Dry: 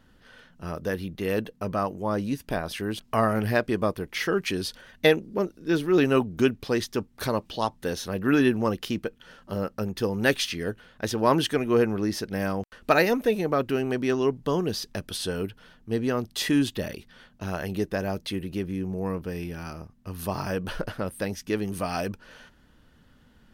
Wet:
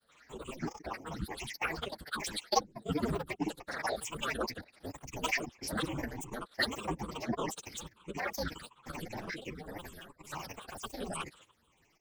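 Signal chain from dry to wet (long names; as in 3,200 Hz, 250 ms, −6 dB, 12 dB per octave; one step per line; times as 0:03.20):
rippled gain that drifts along the octave scale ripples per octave 0.7, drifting −0.54 Hz, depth 24 dB
high-pass filter 71 Hz 24 dB per octave
spectral tilt +2.5 dB per octave
amplitude modulation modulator 180 Hz, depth 100%
granular cloud, pitch spread up and down by 12 semitones
multi-voice chorus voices 4, 1.2 Hz, delay 16 ms, depth 3.3 ms
phase-vocoder stretch with locked phases 0.51×
level −5 dB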